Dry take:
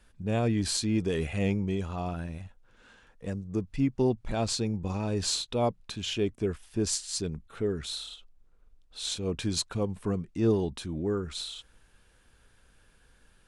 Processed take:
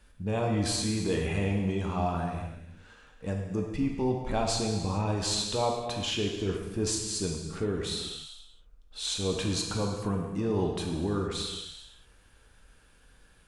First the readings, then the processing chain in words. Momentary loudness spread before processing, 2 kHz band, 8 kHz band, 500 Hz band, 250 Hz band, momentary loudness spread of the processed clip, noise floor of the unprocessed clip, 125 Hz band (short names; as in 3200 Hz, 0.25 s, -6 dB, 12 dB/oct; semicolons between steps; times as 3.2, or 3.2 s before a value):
11 LU, +2.0 dB, +0.5 dB, 0.0 dB, -1.0 dB, 9 LU, -62 dBFS, +0.5 dB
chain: limiter -22 dBFS, peak gain reduction 8 dB; non-linear reverb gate 0.48 s falling, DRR 0.5 dB; dynamic EQ 940 Hz, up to +6 dB, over -50 dBFS, Q 1.6